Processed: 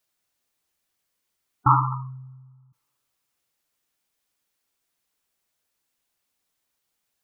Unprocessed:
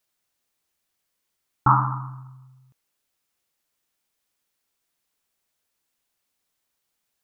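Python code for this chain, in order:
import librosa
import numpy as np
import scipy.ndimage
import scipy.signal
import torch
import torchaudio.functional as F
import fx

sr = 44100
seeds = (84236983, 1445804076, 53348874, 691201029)

y = fx.spec_gate(x, sr, threshold_db=-15, keep='strong')
y = fx.rev_double_slope(y, sr, seeds[0], early_s=0.43, late_s=2.2, knee_db=-27, drr_db=18.5)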